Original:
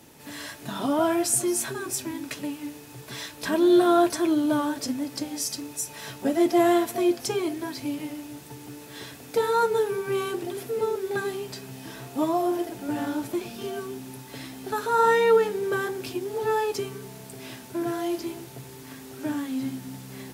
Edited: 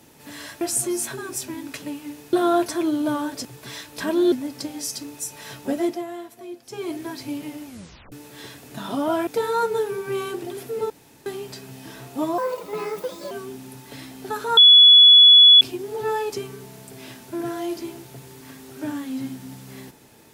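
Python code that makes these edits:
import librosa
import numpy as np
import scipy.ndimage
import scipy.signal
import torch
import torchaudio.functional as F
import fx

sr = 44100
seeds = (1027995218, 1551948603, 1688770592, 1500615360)

y = fx.edit(x, sr, fx.move(start_s=0.61, length_s=0.57, to_s=9.27),
    fx.move(start_s=2.9, length_s=0.87, to_s=4.89),
    fx.fade_down_up(start_s=6.25, length_s=1.36, db=-14.5, fade_s=0.36, curve='qsin'),
    fx.tape_stop(start_s=8.23, length_s=0.46),
    fx.room_tone_fill(start_s=10.9, length_s=0.36),
    fx.speed_span(start_s=12.38, length_s=1.35, speed=1.45),
    fx.bleep(start_s=14.99, length_s=1.04, hz=3400.0, db=-6.5), tone=tone)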